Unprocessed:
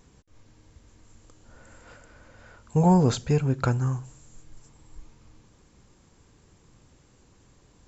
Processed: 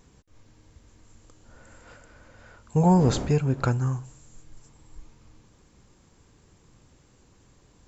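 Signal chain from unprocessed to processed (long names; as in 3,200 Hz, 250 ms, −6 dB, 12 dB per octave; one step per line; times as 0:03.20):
0:02.95–0:03.65: wind on the microphone 390 Hz −34 dBFS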